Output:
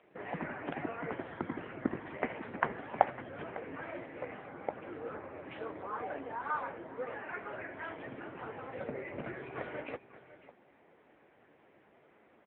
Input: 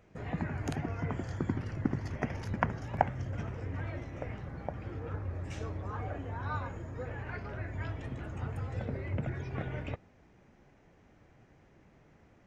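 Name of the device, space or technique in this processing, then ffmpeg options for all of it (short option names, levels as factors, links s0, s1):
satellite phone: -af "highpass=340,lowpass=3200,aecho=1:1:552:0.158,volume=1.78" -ar 8000 -c:a libopencore_amrnb -b:a 6700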